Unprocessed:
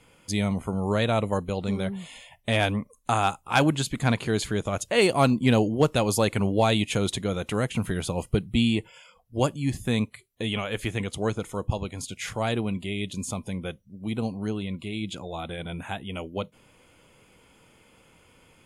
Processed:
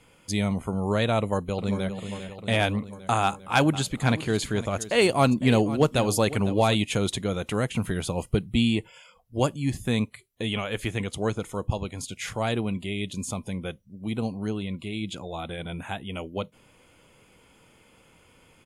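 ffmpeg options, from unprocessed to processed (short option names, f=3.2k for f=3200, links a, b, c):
-filter_complex "[0:a]asplit=2[a][b];[b]afade=t=in:st=1.18:d=0.01,afade=t=out:st=1.9:d=0.01,aecho=0:1:400|800|1200|1600|2000|2400|2800|3200|3600|4000:0.316228|0.221359|0.154952|0.108466|0.0759263|0.0531484|0.0372039|0.0260427|0.0182299|0.0127609[c];[a][c]amix=inputs=2:normalize=0,asettb=1/sr,asplit=3[d][e][f];[d]atrim=end=3.234[g];[e]atrim=start=3.23:end=6.75,asetpts=PTS-STARTPTS,afade=t=in:d=0.004:c=qsin,afade=t=out:st=3.516:d=0.004:c=qsin,aecho=1:1:505:0.168,atrim=end_sample=155232[h];[f]atrim=start=6.746[i];[g][h]acrossfade=d=0.004:c1=hsin:c2=qsin[j];[j][i]acrossfade=d=0.004:c1=qsin:c2=hsin"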